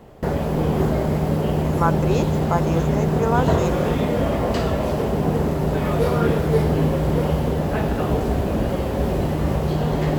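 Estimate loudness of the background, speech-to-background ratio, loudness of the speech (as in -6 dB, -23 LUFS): -21.5 LUFS, -4.5 dB, -26.0 LUFS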